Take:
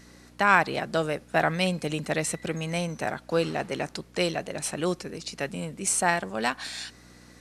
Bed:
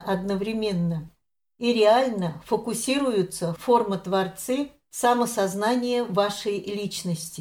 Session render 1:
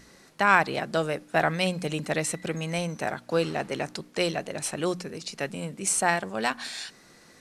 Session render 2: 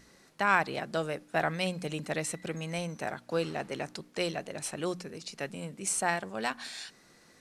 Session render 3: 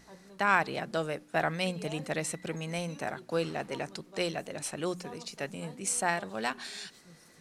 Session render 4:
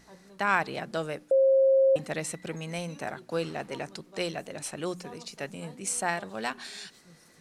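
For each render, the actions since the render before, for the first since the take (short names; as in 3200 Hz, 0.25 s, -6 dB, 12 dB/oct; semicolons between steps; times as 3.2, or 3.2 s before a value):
de-hum 60 Hz, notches 5
gain -5.5 dB
add bed -28 dB
1.31–1.96 bleep 536 Hz -17.5 dBFS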